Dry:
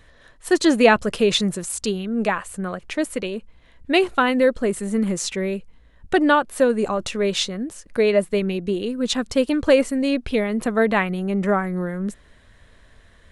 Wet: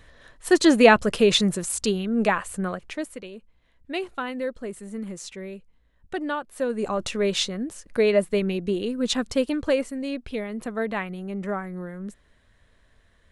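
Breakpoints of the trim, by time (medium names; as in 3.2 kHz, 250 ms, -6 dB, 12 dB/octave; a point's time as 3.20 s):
2.66 s 0 dB
3.20 s -12 dB
6.48 s -12 dB
6.99 s -2 dB
9.23 s -2 dB
9.91 s -9 dB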